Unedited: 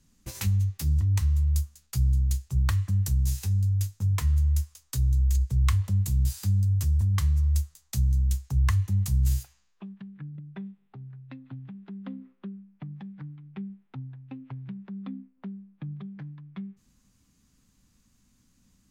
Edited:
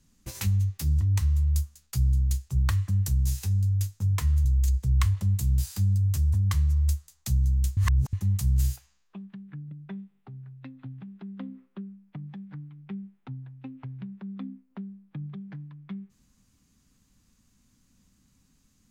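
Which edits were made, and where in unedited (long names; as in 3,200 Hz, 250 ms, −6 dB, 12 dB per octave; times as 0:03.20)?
0:04.45–0:05.12: remove
0:08.44–0:08.80: reverse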